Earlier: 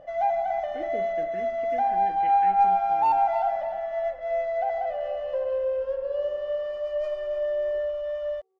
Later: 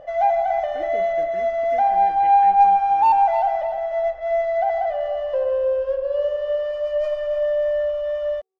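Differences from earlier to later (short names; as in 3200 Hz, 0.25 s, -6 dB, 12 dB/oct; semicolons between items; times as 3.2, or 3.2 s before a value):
first sound +6.0 dB; second sound -10.0 dB; master: add bell 230 Hz -5.5 dB 0.36 oct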